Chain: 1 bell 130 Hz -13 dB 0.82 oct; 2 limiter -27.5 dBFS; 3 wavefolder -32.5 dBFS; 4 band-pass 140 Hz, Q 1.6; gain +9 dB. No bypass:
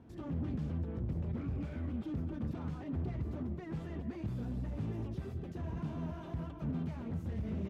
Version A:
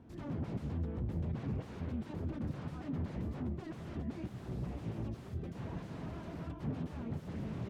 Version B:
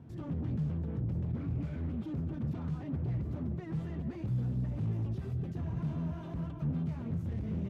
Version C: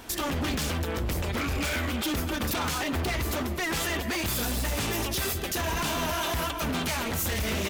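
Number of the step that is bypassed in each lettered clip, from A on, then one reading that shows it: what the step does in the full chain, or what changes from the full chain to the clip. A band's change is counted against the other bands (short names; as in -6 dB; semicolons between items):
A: 2, mean gain reduction 5.0 dB; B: 1, 125 Hz band +5.5 dB; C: 4, 4 kHz band +18.0 dB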